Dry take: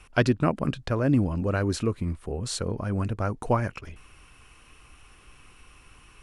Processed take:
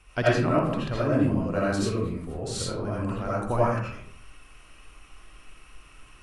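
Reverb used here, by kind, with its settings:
comb and all-pass reverb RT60 0.6 s, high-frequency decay 0.6×, pre-delay 40 ms, DRR −7.5 dB
level −6.5 dB

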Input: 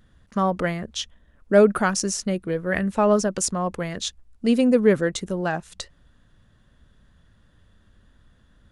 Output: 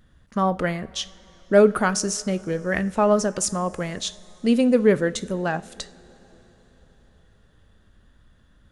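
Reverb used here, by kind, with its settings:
coupled-rooms reverb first 0.39 s, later 4.5 s, from −18 dB, DRR 13.5 dB

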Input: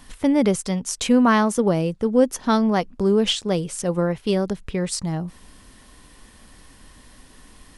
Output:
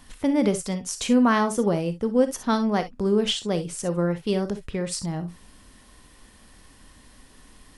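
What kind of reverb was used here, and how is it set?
reverb whose tail is shaped and stops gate 80 ms rising, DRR 10 dB
level −3.5 dB

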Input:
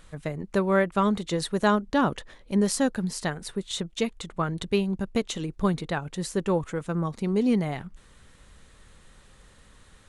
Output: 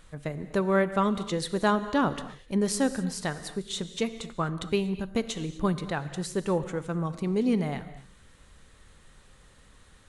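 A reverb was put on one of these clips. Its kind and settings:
reverb whose tail is shaped and stops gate 280 ms flat, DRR 11.5 dB
level −2 dB

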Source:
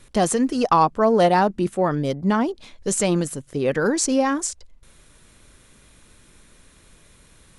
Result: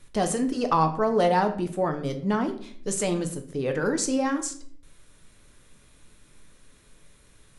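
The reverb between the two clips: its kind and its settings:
rectangular room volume 68 cubic metres, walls mixed, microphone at 0.38 metres
level −6 dB

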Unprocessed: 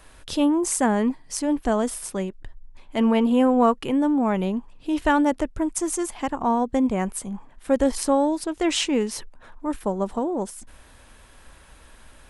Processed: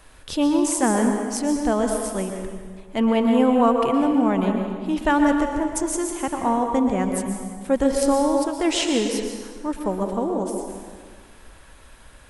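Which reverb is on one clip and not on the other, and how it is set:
dense smooth reverb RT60 1.7 s, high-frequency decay 0.75×, pre-delay 105 ms, DRR 3 dB

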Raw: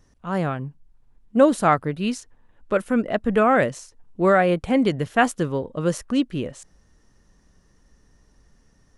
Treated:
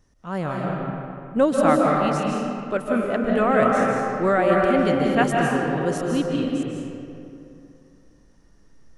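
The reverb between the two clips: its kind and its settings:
comb and all-pass reverb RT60 2.7 s, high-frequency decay 0.55×, pre-delay 115 ms, DRR −2 dB
level −3.5 dB

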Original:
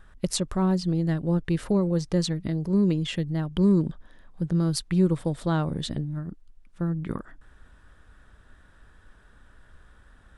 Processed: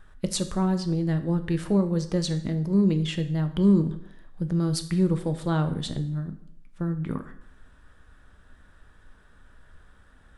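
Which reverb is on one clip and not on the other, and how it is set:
dense smooth reverb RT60 0.69 s, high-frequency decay 0.9×, DRR 8 dB
level −1 dB

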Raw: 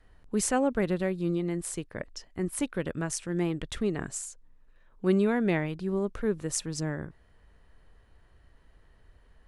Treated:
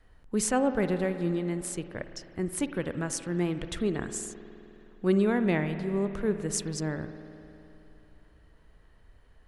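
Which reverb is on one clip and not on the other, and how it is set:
spring reverb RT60 3.1 s, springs 51 ms, chirp 35 ms, DRR 9.5 dB

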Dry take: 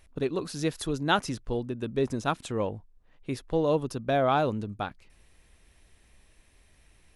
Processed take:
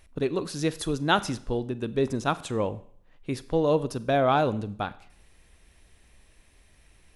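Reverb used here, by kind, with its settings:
four-comb reverb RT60 0.59 s, combs from 32 ms, DRR 16 dB
level +2 dB

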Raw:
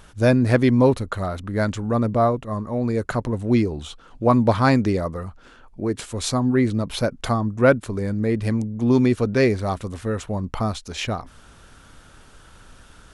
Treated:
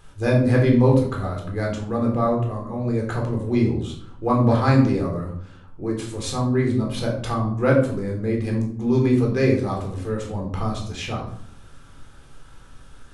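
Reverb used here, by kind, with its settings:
rectangular room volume 810 cubic metres, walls furnished, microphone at 3.9 metres
level −7.5 dB

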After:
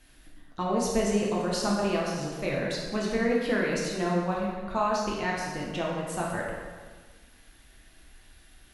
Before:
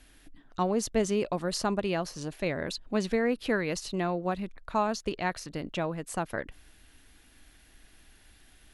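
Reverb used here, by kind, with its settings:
dense smooth reverb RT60 1.5 s, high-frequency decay 0.75×, DRR −4 dB
level −3 dB

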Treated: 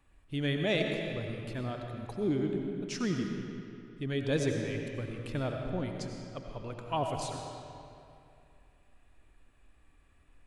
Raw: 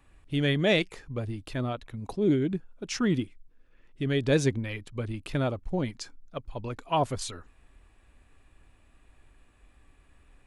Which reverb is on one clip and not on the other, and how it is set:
comb and all-pass reverb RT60 2.6 s, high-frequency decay 0.75×, pre-delay 50 ms, DRR 2.5 dB
level −6.5 dB

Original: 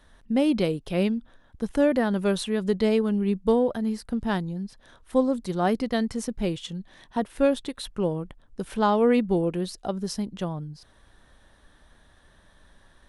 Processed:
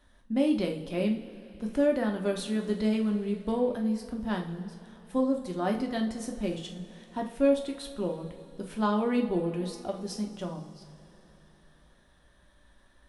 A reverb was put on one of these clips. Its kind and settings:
coupled-rooms reverb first 0.4 s, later 3.7 s, from −18 dB, DRR 1.5 dB
level −7.5 dB

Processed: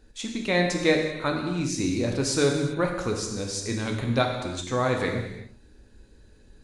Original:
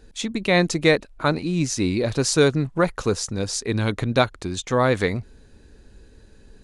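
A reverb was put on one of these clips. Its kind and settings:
reverb whose tail is shaped and stops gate 410 ms falling, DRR 1.5 dB
level −6.5 dB

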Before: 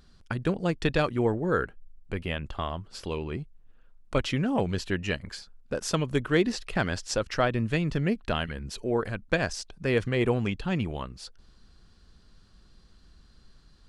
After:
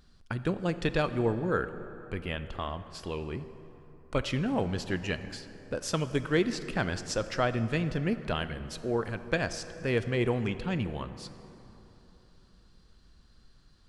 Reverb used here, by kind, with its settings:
dense smooth reverb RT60 3.5 s, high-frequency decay 0.5×, DRR 11 dB
level −3 dB

